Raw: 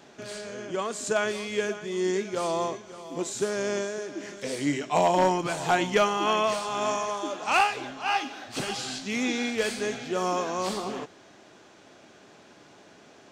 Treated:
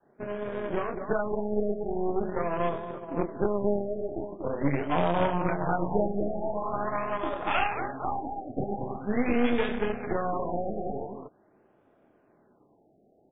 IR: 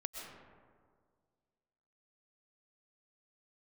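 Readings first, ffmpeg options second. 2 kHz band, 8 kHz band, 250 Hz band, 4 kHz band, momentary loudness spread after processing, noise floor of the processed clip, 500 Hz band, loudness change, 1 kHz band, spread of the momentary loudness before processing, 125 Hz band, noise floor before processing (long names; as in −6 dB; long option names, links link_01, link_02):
−5.5 dB, below −40 dB, +1.5 dB, −12.0 dB, 8 LU, −64 dBFS, −1.0 dB, −2.0 dB, −3.5 dB, 12 LU, +4.0 dB, −54 dBFS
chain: -filter_complex "[0:a]highshelf=frequency=2400:gain=-7.5,acrossover=split=280|3000[link_01][link_02][link_03];[link_02]acompressor=threshold=-34dB:ratio=3[link_04];[link_01][link_04][link_03]amix=inputs=3:normalize=0,aecho=1:1:29.15|230.3:0.631|0.562,aeval=exprs='0.168*(cos(1*acos(clip(val(0)/0.168,-1,1)))-cos(1*PI/2))+0.0211*(cos(3*acos(clip(val(0)/0.168,-1,1)))-cos(3*PI/2))+0.0168*(cos(6*acos(clip(val(0)/0.168,-1,1)))-cos(6*PI/2))':channel_layout=same,adynamicequalizer=threshold=0.00631:dfrequency=250:dqfactor=0.85:tfrequency=250:tqfactor=0.85:attack=5:release=100:ratio=0.375:range=3:mode=cutabove:tftype=bell,agate=range=-13dB:threshold=-44dB:ratio=16:detection=peak,adynamicsmooth=sensitivity=4:basefreq=1600,afftfilt=real='re*lt(b*sr/1024,790*pow(3800/790,0.5+0.5*sin(2*PI*0.44*pts/sr)))':imag='im*lt(b*sr/1024,790*pow(3800/790,0.5+0.5*sin(2*PI*0.44*pts/sr)))':win_size=1024:overlap=0.75,volume=7dB"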